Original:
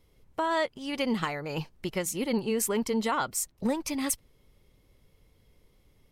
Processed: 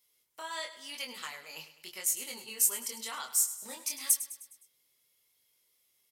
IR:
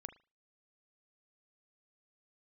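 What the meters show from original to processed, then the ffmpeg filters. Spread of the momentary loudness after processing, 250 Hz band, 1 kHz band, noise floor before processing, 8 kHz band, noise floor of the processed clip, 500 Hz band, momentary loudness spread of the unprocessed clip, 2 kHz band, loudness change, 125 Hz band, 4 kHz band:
18 LU, -25.0 dB, -12.5 dB, -65 dBFS, +4.5 dB, -73 dBFS, -18.5 dB, 7 LU, -7.5 dB, -1.5 dB, under -25 dB, -1.5 dB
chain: -filter_complex "[0:a]aderivative,flanger=delay=20:depth=5.1:speed=0.91,aecho=1:1:103|206|309|412|515:0.211|0.108|0.055|0.028|0.0143,asplit=2[s0][s1];[1:a]atrim=start_sample=2205,adelay=8[s2];[s1][s2]afir=irnorm=-1:irlink=0,volume=0.501[s3];[s0][s3]amix=inputs=2:normalize=0,volume=2.11"

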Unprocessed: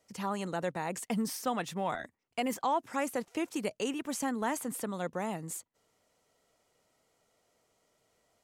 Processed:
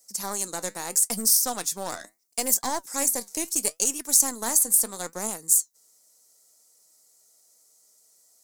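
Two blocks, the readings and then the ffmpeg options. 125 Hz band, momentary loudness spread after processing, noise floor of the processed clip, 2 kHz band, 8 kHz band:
no reading, 12 LU, -62 dBFS, +1.0 dB, +21.5 dB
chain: -filter_complex "[0:a]highpass=220,asplit=2[s0][s1];[s1]asoftclip=type=hard:threshold=0.0355,volume=0.447[s2];[s0][s2]amix=inputs=2:normalize=0,aeval=exprs='0.133*(cos(1*acos(clip(val(0)/0.133,-1,1)))-cos(1*PI/2))+0.0531*(cos(2*acos(clip(val(0)/0.133,-1,1)))-cos(2*PI/2))+0.00422*(cos(5*acos(clip(val(0)/0.133,-1,1)))-cos(5*PI/2))+0.00944*(cos(7*acos(clip(val(0)/0.133,-1,1)))-cos(7*PI/2))+0.00237*(cos(8*acos(clip(val(0)/0.133,-1,1)))-cos(8*PI/2))':c=same,aexciter=amount=13.7:drive=4.4:freq=4500,flanger=delay=3.7:depth=6.8:regen=74:speed=0.75:shape=triangular,volume=1.12"

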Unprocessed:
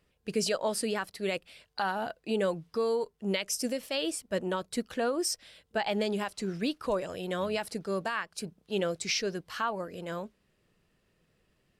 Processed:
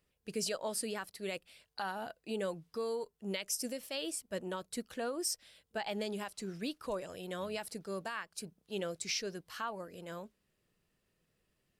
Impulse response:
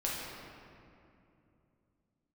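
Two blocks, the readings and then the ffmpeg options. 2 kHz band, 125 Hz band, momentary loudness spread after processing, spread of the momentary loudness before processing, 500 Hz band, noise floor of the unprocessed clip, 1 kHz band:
-7.5 dB, -8.0 dB, 8 LU, 7 LU, -8.0 dB, -73 dBFS, -8.0 dB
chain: -af "highshelf=f=7000:g=9,volume=0.398"

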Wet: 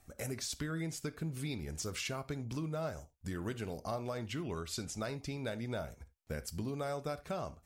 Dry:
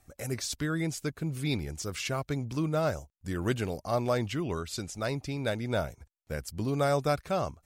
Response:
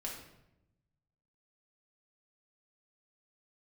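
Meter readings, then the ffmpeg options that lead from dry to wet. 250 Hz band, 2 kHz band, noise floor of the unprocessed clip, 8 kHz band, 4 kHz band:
-7.5 dB, -7.5 dB, -72 dBFS, -4.0 dB, -5.5 dB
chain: -filter_complex "[0:a]acompressor=threshold=0.0178:ratio=6,asplit=2[s0][s1];[1:a]atrim=start_sample=2205,afade=t=out:st=0.14:d=0.01,atrim=end_sample=6615[s2];[s1][s2]afir=irnorm=-1:irlink=0,volume=0.422[s3];[s0][s3]amix=inputs=2:normalize=0,volume=0.75"

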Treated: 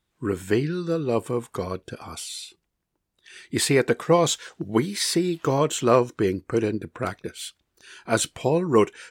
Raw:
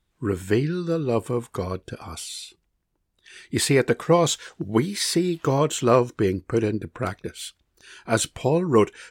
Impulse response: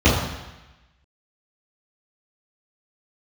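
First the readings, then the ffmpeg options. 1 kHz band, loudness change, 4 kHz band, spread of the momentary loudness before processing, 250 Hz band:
0.0 dB, -0.5 dB, 0.0 dB, 14 LU, -1.0 dB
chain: -af "lowshelf=f=76:g=-11"

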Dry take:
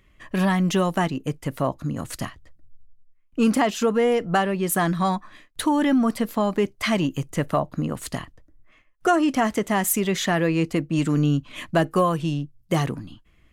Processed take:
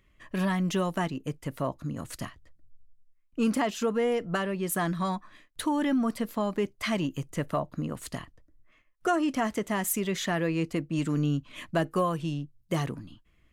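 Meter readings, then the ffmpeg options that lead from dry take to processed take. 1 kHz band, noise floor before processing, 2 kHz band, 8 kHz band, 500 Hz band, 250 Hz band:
-7.5 dB, -59 dBFS, -6.5 dB, -6.5 dB, -6.5 dB, -6.5 dB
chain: -af "bandreject=f=780:w=15,volume=0.473"

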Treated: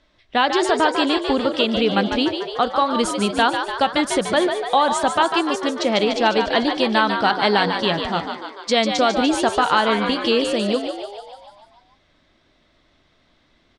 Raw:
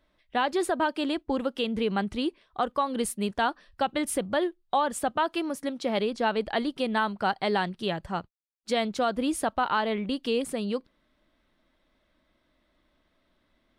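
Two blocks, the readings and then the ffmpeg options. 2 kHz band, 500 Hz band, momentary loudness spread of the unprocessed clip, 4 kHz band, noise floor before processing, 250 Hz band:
+10.5 dB, +9.0 dB, 6 LU, +13.0 dB, -72 dBFS, +8.0 dB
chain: -filter_complex "[0:a]lowpass=f=6600:w=0.5412,lowpass=f=6600:w=1.3066,highshelf=f=4000:g=10.5,bandreject=f=188.8:t=h:w=4,bandreject=f=377.6:t=h:w=4,bandreject=f=566.4:t=h:w=4,bandreject=f=755.2:t=h:w=4,bandreject=f=944:t=h:w=4,bandreject=f=1132.8:t=h:w=4,bandreject=f=1321.6:t=h:w=4,bandreject=f=1510.4:t=h:w=4,bandreject=f=1699.2:t=h:w=4,asplit=9[s0][s1][s2][s3][s4][s5][s6][s7][s8];[s1]adelay=147,afreqshift=68,volume=0.447[s9];[s2]adelay=294,afreqshift=136,volume=0.269[s10];[s3]adelay=441,afreqshift=204,volume=0.16[s11];[s4]adelay=588,afreqshift=272,volume=0.0966[s12];[s5]adelay=735,afreqshift=340,volume=0.0582[s13];[s6]adelay=882,afreqshift=408,volume=0.0347[s14];[s7]adelay=1029,afreqshift=476,volume=0.0209[s15];[s8]adelay=1176,afreqshift=544,volume=0.0124[s16];[s0][s9][s10][s11][s12][s13][s14][s15][s16]amix=inputs=9:normalize=0,volume=2.37"

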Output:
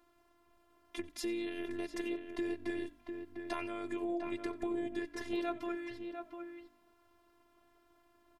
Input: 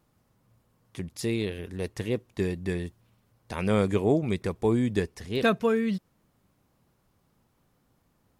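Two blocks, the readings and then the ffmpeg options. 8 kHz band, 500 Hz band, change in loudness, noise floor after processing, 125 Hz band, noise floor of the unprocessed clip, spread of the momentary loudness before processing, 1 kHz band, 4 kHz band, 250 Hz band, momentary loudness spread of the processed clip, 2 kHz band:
-8.0 dB, -12.0 dB, -12.0 dB, -70 dBFS, -27.5 dB, -70 dBFS, 11 LU, -8.5 dB, -9.5 dB, -9.5 dB, 9 LU, -9.5 dB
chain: -filter_complex "[0:a]alimiter=limit=0.0794:level=0:latency=1:release=101,acompressor=threshold=0.0158:ratio=6,bass=f=250:g=-8,treble=f=4000:g=-9,asplit=2[s0][s1];[s1]adelay=699.7,volume=0.501,highshelf=f=4000:g=-15.7[s2];[s0][s2]amix=inputs=2:normalize=0,afftfilt=real='hypot(re,im)*cos(PI*b)':imag='0':win_size=512:overlap=0.75,asplit=2[s3][s4];[s4]asplit=2[s5][s6];[s5]adelay=91,afreqshift=-50,volume=0.0794[s7];[s6]adelay=182,afreqshift=-100,volume=0.0245[s8];[s7][s8]amix=inputs=2:normalize=0[s9];[s3][s9]amix=inputs=2:normalize=0,volume=2.37"

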